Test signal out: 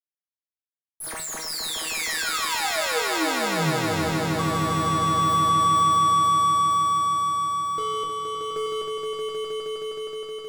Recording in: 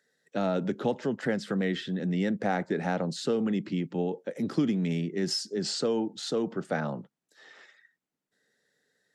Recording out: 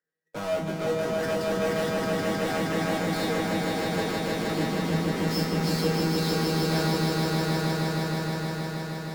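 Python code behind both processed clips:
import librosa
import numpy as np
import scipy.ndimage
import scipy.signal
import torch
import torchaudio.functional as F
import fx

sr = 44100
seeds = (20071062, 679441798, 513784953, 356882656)

p1 = scipy.ndimage.median_filter(x, 15, mode='constant')
p2 = fx.low_shelf(p1, sr, hz=410.0, db=-3.0)
p3 = fx.hum_notches(p2, sr, base_hz=60, count=3)
p4 = fx.fuzz(p3, sr, gain_db=48.0, gate_db=-57.0)
p5 = p3 + (p4 * 10.0 ** (-8.0 / 20.0))
p6 = fx.comb_fb(p5, sr, f0_hz=160.0, decay_s=0.37, harmonics='all', damping=0.0, mix_pct=90)
y = p6 + fx.echo_swell(p6, sr, ms=157, loudest=5, wet_db=-4.0, dry=0)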